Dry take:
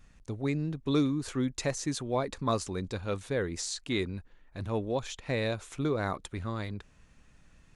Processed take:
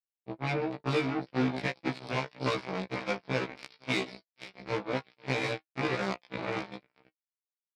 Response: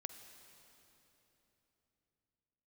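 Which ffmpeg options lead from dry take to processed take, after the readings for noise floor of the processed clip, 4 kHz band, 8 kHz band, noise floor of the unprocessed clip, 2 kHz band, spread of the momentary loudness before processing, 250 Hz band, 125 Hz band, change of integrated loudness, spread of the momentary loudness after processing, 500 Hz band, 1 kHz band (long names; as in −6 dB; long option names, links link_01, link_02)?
below −85 dBFS, +0.5 dB, −12.5 dB, −61 dBFS, +5.0 dB, 8 LU, −2.5 dB, −3.0 dB, −0.5 dB, 11 LU, −1.0 dB, +2.0 dB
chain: -filter_complex "[0:a]aeval=exprs='val(0)+0.5*0.00668*sgn(val(0))':channel_layout=same,asplit=2[link_01][link_02];[link_02]adynamicsmooth=sensitivity=5:basefreq=1700,volume=0.5dB[link_03];[link_01][link_03]amix=inputs=2:normalize=0,bass=frequency=250:gain=3,treble=frequency=4000:gain=10,aecho=1:1:488|976|1464|1952:0.376|0.12|0.0385|0.0123[link_04];[1:a]atrim=start_sample=2205,afade=type=out:start_time=0.2:duration=0.01,atrim=end_sample=9261[link_05];[link_04][link_05]afir=irnorm=-1:irlink=0,aresample=11025,acrusher=bits=3:mix=0:aa=0.5,aresample=44100,flanger=delay=5.6:depth=1.1:regen=58:speed=0.66:shape=sinusoidal,aeval=exprs='0.224*(cos(1*acos(clip(val(0)/0.224,-1,1)))-cos(1*PI/2))+0.0224*(cos(7*acos(clip(val(0)/0.224,-1,1)))-cos(7*PI/2))':channel_layout=same,highpass=120,equalizer=frequency=2300:width_type=o:width=0.29:gain=9,acompressor=threshold=-34dB:ratio=2.5,afftfilt=real='re*1.73*eq(mod(b,3),0)':imag='im*1.73*eq(mod(b,3),0)':win_size=2048:overlap=0.75,volume=8.5dB"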